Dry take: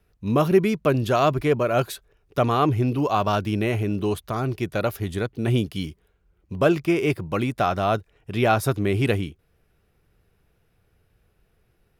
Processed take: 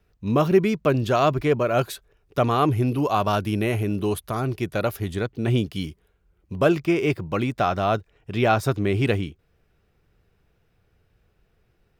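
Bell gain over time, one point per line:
bell 11000 Hz 0.36 oct
-9 dB
from 1.75 s -2 dB
from 2.58 s +8 dB
from 4.41 s +1 dB
from 5.13 s -10 dB
from 5.73 s -0.5 dB
from 6.77 s -12 dB

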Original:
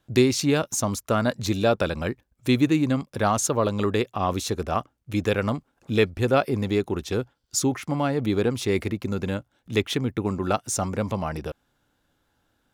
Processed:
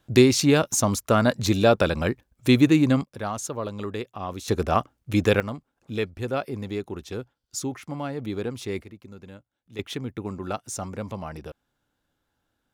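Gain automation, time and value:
+3 dB
from 3.04 s -8 dB
from 4.48 s +3.5 dB
from 5.4 s -7 dB
from 8.82 s -16.5 dB
from 9.79 s -6.5 dB

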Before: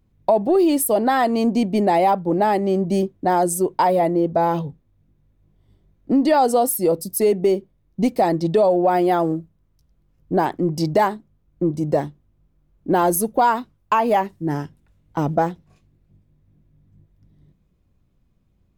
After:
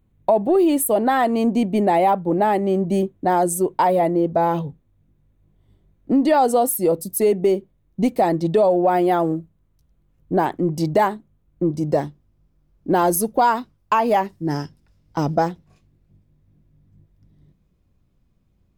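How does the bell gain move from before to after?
bell 5100 Hz 0.37 oct
-13 dB
from 3.16 s -6.5 dB
from 11.7 s +4 dB
from 14.45 s +13 dB
from 15.48 s +1.5 dB

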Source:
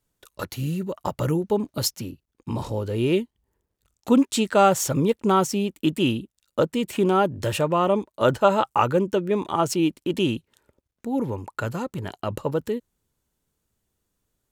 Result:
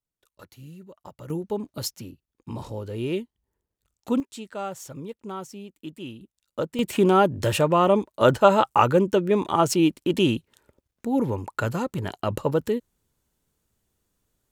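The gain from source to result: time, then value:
-16.5 dB
from 1.3 s -6 dB
from 4.2 s -15.5 dB
from 6.21 s -6.5 dB
from 6.79 s +2 dB

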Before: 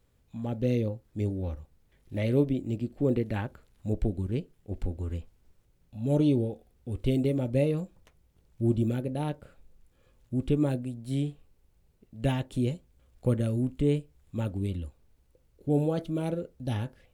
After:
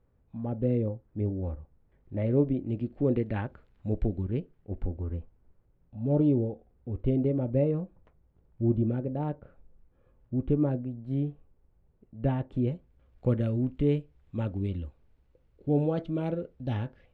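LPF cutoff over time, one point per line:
2.36 s 1300 Hz
2.81 s 2500 Hz
4.12 s 2500 Hz
5.1 s 1300 Hz
12.34 s 1300 Hz
13.31 s 2800 Hz

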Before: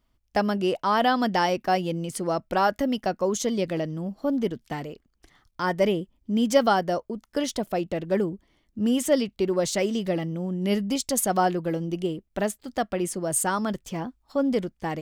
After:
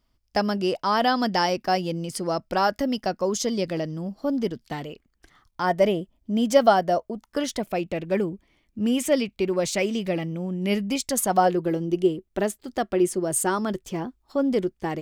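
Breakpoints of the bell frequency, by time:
bell +9.5 dB 0.26 oct
4.6 s 5000 Hz
5.73 s 660 Hz
7.11 s 660 Hz
7.65 s 2400 Hz
11.01 s 2400 Hz
11.58 s 370 Hz

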